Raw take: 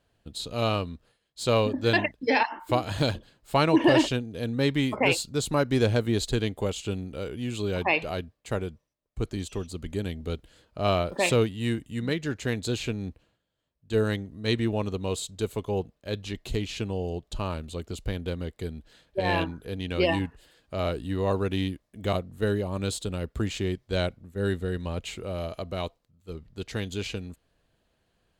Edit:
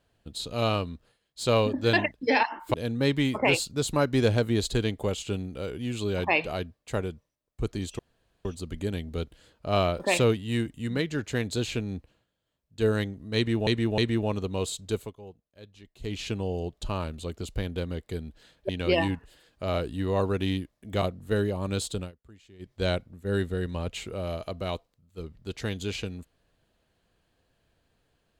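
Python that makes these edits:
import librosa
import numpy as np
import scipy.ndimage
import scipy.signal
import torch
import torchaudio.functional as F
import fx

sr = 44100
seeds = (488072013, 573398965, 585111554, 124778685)

y = fx.edit(x, sr, fx.cut(start_s=2.74, length_s=1.58),
    fx.insert_room_tone(at_s=9.57, length_s=0.46),
    fx.repeat(start_s=14.48, length_s=0.31, count=3),
    fx.fade_down_up(start_s=15.46, length_s=1.21, db=-17.0, fade_s=0.18),
    fx.cut(start_s=19.19, length_s=0.61),
    fx.fade_down_up(start_s=23.1, length_s=0.73, db=-24.0, fade_s=0.13), tone=tone)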